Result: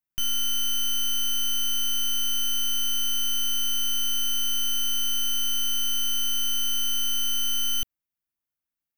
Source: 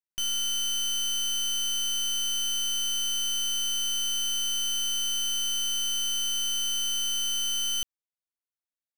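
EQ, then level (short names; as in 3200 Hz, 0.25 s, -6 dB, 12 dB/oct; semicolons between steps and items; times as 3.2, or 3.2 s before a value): graphic EQ 500/1000/2000/4000/8000 Hz -9/-5/-3/-9/-10 dB; +9.0 dB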